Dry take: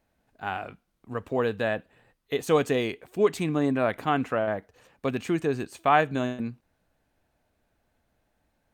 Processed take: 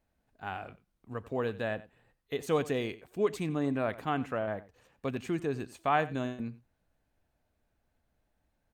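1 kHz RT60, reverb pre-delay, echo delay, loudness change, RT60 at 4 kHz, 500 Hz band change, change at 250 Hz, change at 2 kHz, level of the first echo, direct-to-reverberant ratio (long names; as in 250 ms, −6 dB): no reverb audible, no reverb audible, 91 ms, −6.5 dB, no reverb audible, −6.5 dB, −6.0 dB, −7.0 dB, −18.0 dB, no reverb audible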